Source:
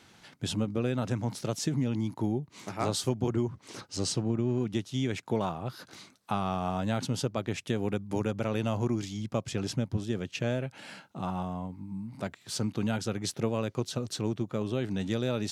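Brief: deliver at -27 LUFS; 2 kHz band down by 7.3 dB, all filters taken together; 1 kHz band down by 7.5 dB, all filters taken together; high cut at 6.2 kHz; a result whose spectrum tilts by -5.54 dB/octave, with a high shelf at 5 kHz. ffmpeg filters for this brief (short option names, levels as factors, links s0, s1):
-af "lowpass=6200,equalizer=f=1000:t=o:g=-9,equalizer=f=2000:t=o:g=-8.5,highshelf=f=5000:g=6,volume=2"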